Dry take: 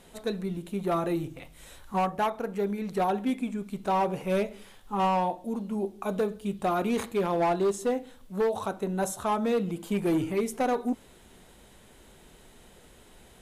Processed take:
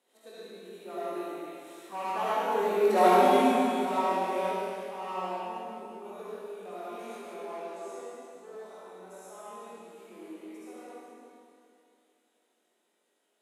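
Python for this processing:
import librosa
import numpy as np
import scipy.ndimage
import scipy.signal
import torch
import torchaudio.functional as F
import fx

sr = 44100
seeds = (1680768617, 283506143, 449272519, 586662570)

y = fx.doppler_pass(x, sr, speed_mps=5, closest_m=1.4, pass_at_s=3.02)
y = scipy.signal.sosfilt(scipy.signal.butter(4, 280.0, 'highpass', fs=sr, output='sos'), y)
y = fx.room_flutter(y, sr, wall_m=3.8, rt60_s=0.22)
y = fx.rev_freeverb(y, sr, rt60_s=2.6, hf_ratio=1.0, predelay_ms=30, drr_db=-10.0)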